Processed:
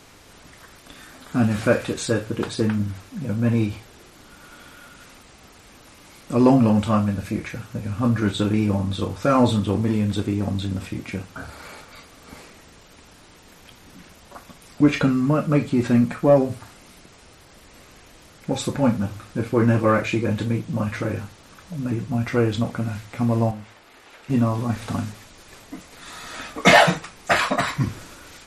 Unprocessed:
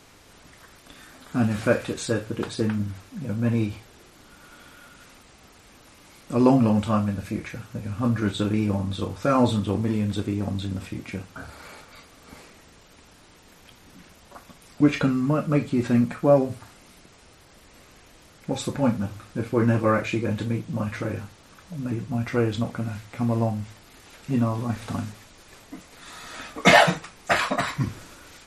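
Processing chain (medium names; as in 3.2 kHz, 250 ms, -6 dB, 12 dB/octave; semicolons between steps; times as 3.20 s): 23.51–24.30 s: tone controls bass -13 dB, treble -9 dB; in parallel at -3.5 dB: saturation -14 dBFS, distortion -14 dB; on the sum: trim -1 dB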